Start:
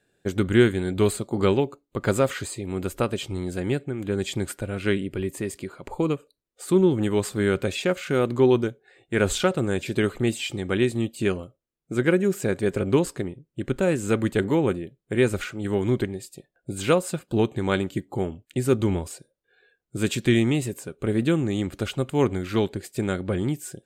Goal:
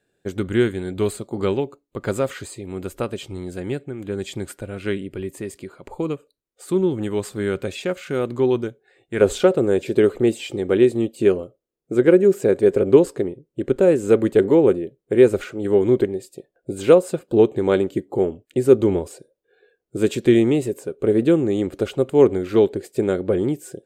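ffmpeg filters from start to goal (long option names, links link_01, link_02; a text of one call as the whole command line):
ffmpeg -i in.wav -af "asetnsamples=nb_out_samples=441:pad=0,asendcmd='9.21 equalizer g 13.5',equalizer=frequency=440:width_type=o:width=1.4:gain=3,volume=-3dB" out.wav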